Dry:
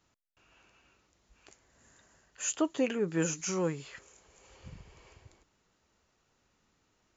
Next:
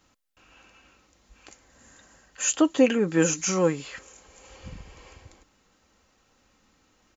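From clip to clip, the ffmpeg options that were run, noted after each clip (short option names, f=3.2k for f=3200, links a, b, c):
-af "aecho=1:1:3.8:0.39,volume=8dB"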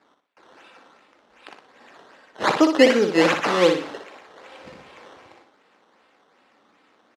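-filter_complex "[0:a]acrusher=samples=13:mix=1:aa=0.000001:lfo=1:lforange=13:lforate=2.6,highpass=330,lowpass=4.5k,asplit=2[a][b];[b]aecho=0:1:60|120|180|240:0.473|0.175|0.0648|0.024[c];[a][c]amix=inputs=2:normalize=0,volume=6.5dB"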